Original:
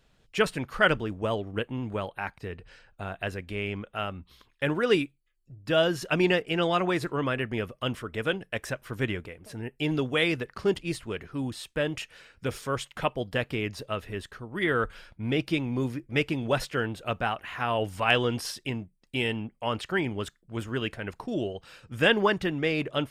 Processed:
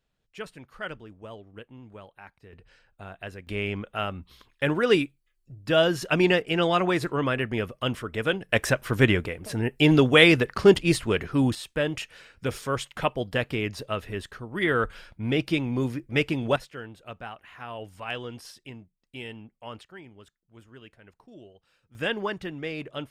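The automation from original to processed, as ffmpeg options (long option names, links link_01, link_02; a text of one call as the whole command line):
ffmpeg -i in.wav -af "asetnsamples=nb_out_samples=441:pad=0,asendcmd='2.53 volume volume -6dB;3.47 volume volume 2.5dB;8.49 volume volume 9.5dB;11.55 volume volume 2dB;16.56 volume volume -10.5dB;19.83 volume volume -18dB;21.95 volume volume -6.5dB',volume=-13.5dB" out.wav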